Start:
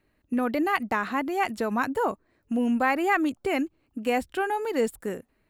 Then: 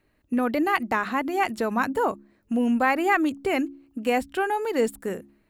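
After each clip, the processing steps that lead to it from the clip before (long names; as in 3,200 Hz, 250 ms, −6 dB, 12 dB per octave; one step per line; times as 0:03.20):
hum removal 69.26 Hz, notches 5
level +2 dB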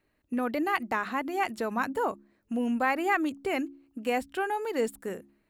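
low-shelf EQ 200 Hz −4 dB
level −4.5 dB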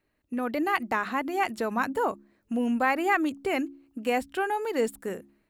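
automatic gain control gain up to 4 dB
level −2 dB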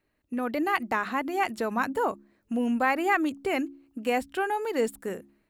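no processing that can be heard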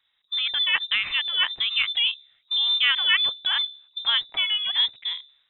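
voice inversion scrambler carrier 3,800 Hz
level +3.5 dB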